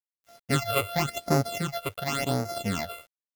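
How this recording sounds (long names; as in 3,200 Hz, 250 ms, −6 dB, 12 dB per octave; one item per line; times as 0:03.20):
a buzz of ramps at a fixed pitch in blocks of 64 samples
phaser sweep stages 8, 0.92 Hz, lowest notch 220–3,100 Hz
sample-and-hold tremolo
a quantiser's noise floor 10 bits, dither none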